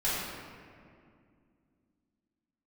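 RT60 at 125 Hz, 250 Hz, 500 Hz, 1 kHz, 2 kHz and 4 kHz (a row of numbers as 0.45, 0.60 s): 3.0, 3.5, 2.4, 2.1, 1.9, 1.2 s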